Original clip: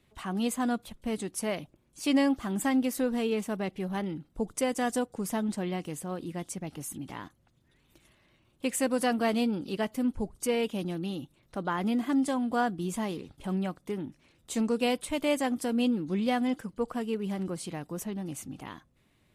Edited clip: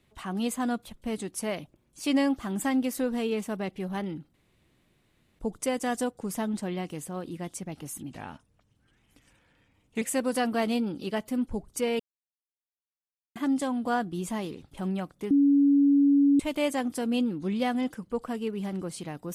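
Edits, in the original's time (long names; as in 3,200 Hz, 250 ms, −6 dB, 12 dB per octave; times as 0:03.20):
0:04.34: splice in room tone 1.05 s
0:07.06–0:08.68: play speed 85%
0:10.66–0:12.02: silence
0:13.97–0:15.06: beep over 282 Hz −17 dBFS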